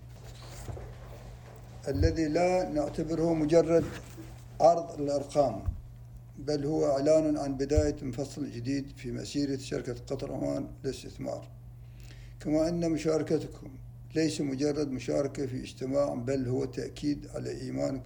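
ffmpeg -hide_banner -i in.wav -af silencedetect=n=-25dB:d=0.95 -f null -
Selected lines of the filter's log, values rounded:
silence_start: 0.00
silence_end: 1.88 | silence_duration: 1.88
silence_start: 11.33
silence_end: 12.48 | silence_duration: 1.15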